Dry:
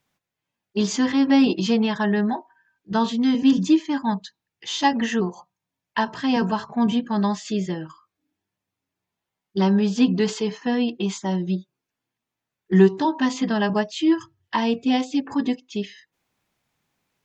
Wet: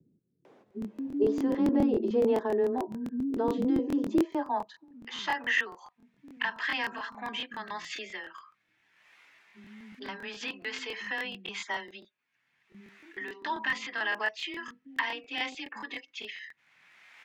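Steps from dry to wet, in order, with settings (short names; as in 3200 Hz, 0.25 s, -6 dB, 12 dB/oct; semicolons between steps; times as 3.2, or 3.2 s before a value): in parallel at -3 dB: upward compressor, threshold -20 dBFS; on the sum: limiter -11 dBFS, peak gain reduction 11.5 dB; band-pass sweep 400 Hz -> 2000 Hz, 3.59–5.15; frequency shift +14 Hz; tremolo 1.6 Hz, depth 35%; bands offset in time lows, highs 0.45 s, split 240 Hz; crackling interface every 0.14 s, samples 1024, repeat, from 0.66; gain +2.5 dB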